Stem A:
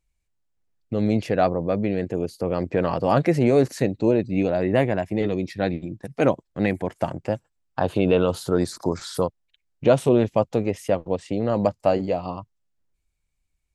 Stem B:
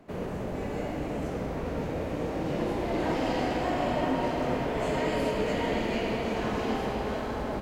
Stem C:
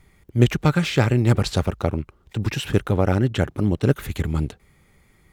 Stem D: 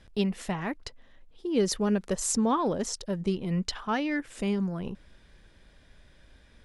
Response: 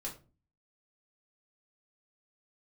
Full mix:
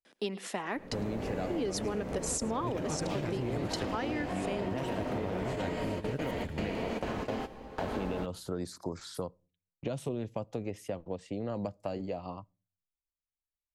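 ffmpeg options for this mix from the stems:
-filter_complex "[0:a]agate=range=-16dB:threshold=-44dB:ratio=16:detection=peak,acrossover=split=250|3000[link_01][link_02][link_03];[link_02]acompressor=threshold=-21dB:ratio=6[link_04];[link_01][link_04][link_03]amix=inputs=3:normalize=0,volume=-10.5dB,asplit=3[link_05][link_06][link_07];[link_06]volume=-22.5dB[link_08];[1:a]alimiter=limit=-21.5dB:level=0:latency=1:release=430,adelay=650,volume=-1.5dB,asplit=2[link_09][link_10];[link_10]volume=-15.5dB[link_11];[2:a]adelay=2250,volume=-15dB,asplit=2[link_12][link_13];[link_13]volume=-12.5dB[link_14];[3:a]highpass=frequency=250:width=0.5412,highpass=frequency=250:width=1.3066,adelay=50,volume=1dB,asplit=2[link_15][link_16];[link_16]volume=-22.5dB[link_17];[link_07]apad=whole_len=364527[link_18];[link_09][link_18]sidechaingate=range=-26dB:threshold=-47dB:ratio=16:detection=peak[link_19];[4:a]atrim=start_sample=2205[link_20];[link_08][link_11]amix=inputs=2:normalize=0[link_21];[link_21][link_20]afir=irnorm=-1:irlink=0[link_22];[link_14][link_17]amix=inputs=2:normalize=0,aecho=0:1:107:1[link_23];[link_05][link_19][link_12][link_15][link_22][link_23]amix=inputs=6:normalize=0,acompressor=threshold=-30dB:ratio=6"

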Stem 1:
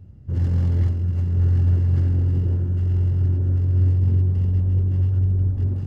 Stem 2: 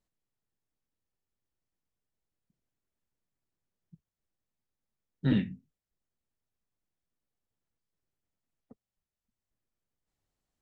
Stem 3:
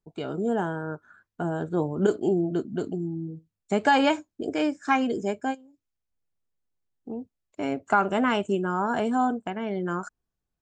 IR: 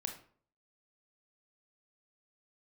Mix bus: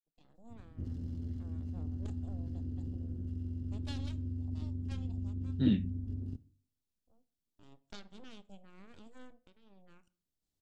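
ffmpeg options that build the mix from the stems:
-filter_complex "[0:a]acompressor=threshold=-25dB:ratio=12,tremolo=f=160:d=0.71,adelay=500,volume=-8dB,asplit=2[link_01][link_02];[link_02]volume=-9dB[link_03];[1:a]adelay=350,volume=-1dB[link_04];[2:a]aeval=exprs='0.398*(cos(1*acos(clip(val(0)/0.398,-1,1)))-cos(1*PI/2))+0.141*(cos(3*acos(clip(val(0)/0.398,-1,1)))-cos(3*PI/2))+0.0447*(cos(4*acos(clip(val(0)/0.398,-1,1)))-cos(4*PI/2))+0.0631*(cos(6*acos(clip(val(0)/0.398,-1,1)))-cos(6*PI/2))':channel_layout=same,volume=-19.5dB,asplit=3[link_05][link_06][link_07];[link_06]volume=-8.5dB[link_08];[link_07]apad=whole_len=483685[link_09];[link_04][link_09]sidechaincompress=threshold=-59dB:ratio=8:attack=6.7:release=190[link_10];[3:a]atrim=start_sample=2205[link_11];[link_03][link_08]amix=inputs=2:normalize=0[link_12];[link_12][link_11]afir=irnorm=-1:irlink=0[link_13];[link_01][link_10][link_05][link_13]amix=inputs=4:normalize=0,equalizer=frequency=125:width_type=o:width=1:gain=-4,equalizer=frequency=250:width_type=o:width=1:gain=3,equalizer=frequency=500:width_type=o:width=1:gain=-4,equalizer=frequency=1000:width_type=o:width=1:gain=-9,equalizer=frequency=2000:width_type=o:width=1:gain=-9,equalizer=frequency=4000:width_type=o:width=1:gain=3"

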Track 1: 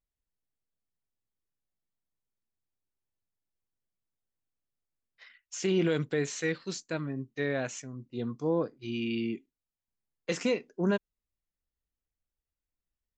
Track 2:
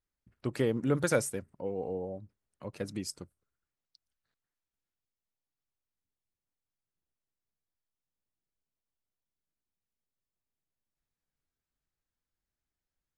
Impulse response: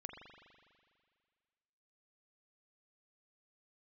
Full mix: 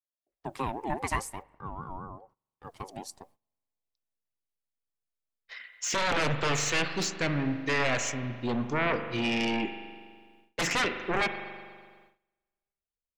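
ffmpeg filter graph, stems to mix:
-filter_complex "[0:a]aeval=exprs='0.141*sin(PI/2*4.47*val(0)/0.141)':channel_layout=same,adelay=300,volume=-3.5dB,asplit=3[link_01][link_02][link_03];[link_01]atrim=end=1.43,asetpts=PTS-STARTPTS,afade=type=out:start_time=1.426:duration=0.004:curve=hsin[link_04];[link_02]atrim=start=1.43:end=2.64,asetpts=PTS-STARTPTS,volume=0[link_05];[link_03]atrim=start=2.64,asetpts=PTS-STARTPTS,afade=type=in:duration=0.004:curve=hsin[link_06];[link_04][link_05][link_06]concat=n=3:v=0:a=1,asplit=2[link_07][link_08];[link_08]volume=-5dB[link_09];[1:a]aeval=exprs='val(0)*sin(2*PI*560*n/s+560*0.2/4.9*sin(2*PI*4.9*n/s))':channel_layout=same,volume=-2dB,asplit=3[link_10][link_11][link_12];[link_11]volume=-17.5dB[link_13];[link_12]apad=whole_len=594463[link_14];[link_07][link_14]sidechaingate=range=-11dB:threshold=-56dB:ratio=16:detection=peak[link_15];[2:a]atrim=start_sample=2205[link_16];[link_09][link_13]amix=inputs=2:normalize=0[link_17];[link_17][link_16]afir=irnorm=-1:irlink=0[link_18];[link_15][link_10][link_18]amix=inputs=3:normalize=0,agate=range=-18dB:threshold=-59dB:ratio=16:detection=peak,adynamicequalizer=threshold=0.00501:dfrequency=2100:dqfactor=1.4:tfrequency=2100:tqfactor=1.4:attack=5:release=100:ratio=0.375:range=3:mode=boostabove:tftype=bell"

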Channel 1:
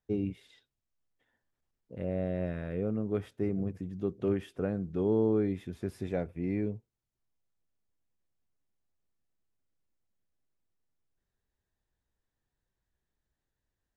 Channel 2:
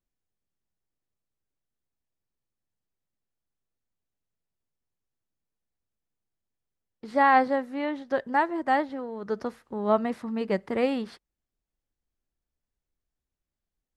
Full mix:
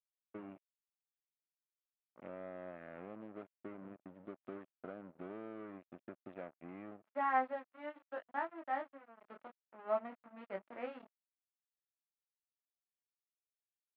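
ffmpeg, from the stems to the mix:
ffmpeg -i stem1.wav -i stem2.wav -filter_complex "[0:a]acompressor=threshold=-34dB:ratio=4,adelay=250,volume=-5dB[link_01];[1:a]flanger=delay=18:depth=4:speed=0.16,bandreject=frequency=50:width_type=h:width=6,bandreject=frequency=100:width_type=h:width=6,bandreject=frequency=150:width_type=h:width=6,bandreject=frequency=200:width_type=h:width=6,bandreject=frequency=250:width_type=h:width=6,bandreject=frequency=300:width_type=h:width=6,bandreject=frequency=350:width_type=h:width=6,bandreject=frequency=400:width_type=h:width=6,bandreject=frequency=450:width_type=h:width=6,volume=-11.5dB[link_02];[link_01][link_02]amix=inputs=2:normalize=0,aeval=exprs='sgn(val(0))*max(abs(val(0))-0.00355,0)':channel_layout=same,highpass=260,equalizer=frequency=440:width_type=q:width=4:gain=-7,equalizer=frequency=630:width_type=q:width=4:gain=5,equalizer=frequency=1300:width_type=q:width=4:gain=4,lowpass=frequency=2700:width=0.5412,lowpass=frequency=2700:width=1.3066" out.wav

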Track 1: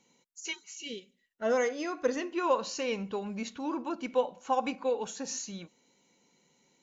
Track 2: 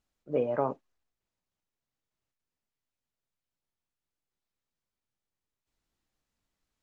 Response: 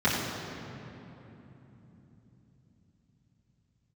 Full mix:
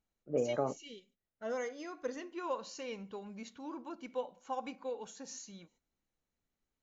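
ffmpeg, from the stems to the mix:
-filter_complex "[0:a]bandreject=frequency=2600:width=18,agate=range=-18dB:threshold=-58dB:ratio=16:detection=peak,volume=-10dB[link_01];[1:a]lowpass=frequency=1700:poles=1,bandreject=frequency=970:width=5.6,volume=-3.5dB[link_02];[link_01][link_02]amix=inputs=2:normalize=0"

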